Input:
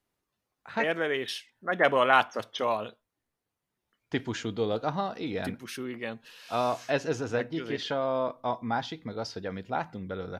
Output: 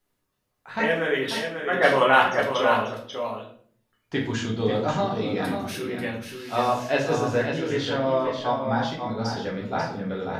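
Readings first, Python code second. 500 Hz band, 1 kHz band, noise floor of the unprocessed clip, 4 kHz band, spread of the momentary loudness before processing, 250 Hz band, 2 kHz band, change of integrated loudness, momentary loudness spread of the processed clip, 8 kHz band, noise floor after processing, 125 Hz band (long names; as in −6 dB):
+5.5 dB, +5.0 dB, −85 dBFS, +5.0 dB, 13 LU, +6.5 dB, +6.0 dB, +5.5 dB, 12 LU, +5.5 dB, −76 dBFS, +8.0 dB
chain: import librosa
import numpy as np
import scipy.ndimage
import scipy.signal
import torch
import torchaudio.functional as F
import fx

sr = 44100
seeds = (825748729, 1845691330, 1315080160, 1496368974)

p1 = fx.high_shelf(x, sr, hz=9600.0, db=4.0)
p2 = p1 + fx.echo_single(p1, sr, ms=540, db=-7.0, dry=0)
y = fx.room_shoebox(p2, sr, seeds[0], volume_m3=62.0, walls='mixed', distance_m=1.0)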